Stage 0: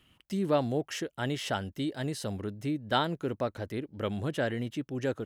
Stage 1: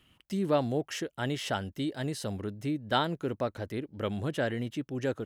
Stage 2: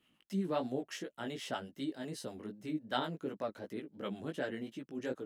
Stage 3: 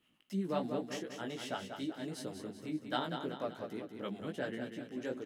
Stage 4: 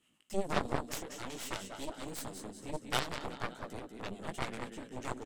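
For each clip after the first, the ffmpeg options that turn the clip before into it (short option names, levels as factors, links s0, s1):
-af anull
-filter_complex "[0:a]lowshelf=f=140:t=q:w=1.5:g=-11,flanger=delay=15:depth=4.2:speed=2.7,acrossover=split=600[s0][s1];[s0]aeval=exprs='val(0)*(1-0.5/2+0.5/2*cos(2*PI*8*n/s))':c=same[s2];[s1]aeval=exprs='val(0)*(1-0.5/2-0.5/2*cos(2*PI*8*n/s))':c=same[s3];[s2][s3]amix=inputs=2:normalize=0,volume=0.75"
-af "aecho=1:1:191|382|573|764|955|1146:0.447|0.214|0.103|0.0494|0.0237|0.0114,volume=0.891"
-af "equalizer=f=7900:w=1.8:g=13.5,aresample=32000,aresample=44100,aeval=exprs='0.106*(cos(1*acos(clip(val(0)/0.106,-1,1)))-cos(1*PI/2))+0.0188*(cos(6*acos(clip(val(0)/0.106,-1,1)))-cos(6*PI/2))+0.0266*(cos(7*acos(clip(val(0)/0.106,-1,1)))-cos(7*PI/2))':c=same,volume=1.26"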